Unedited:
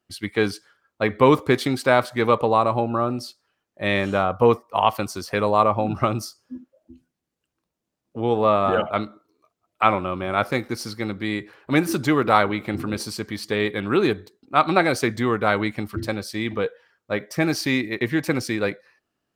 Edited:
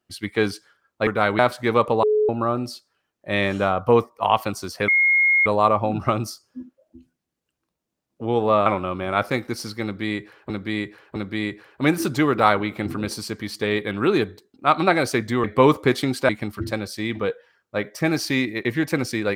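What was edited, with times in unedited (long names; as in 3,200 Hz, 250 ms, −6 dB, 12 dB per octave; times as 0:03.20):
0:01.07–0:01.92: swap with 0:15.33–0:15.65
0:02.56–0:02.82: beep over 426 Hz −15.5 dBFS
0:05.41: insert tone 2,150 Hz −14 dBFS 0.58 s
0:08.61–0:09.87: remove
0:11.05–0:11.71: repeat, 3 plays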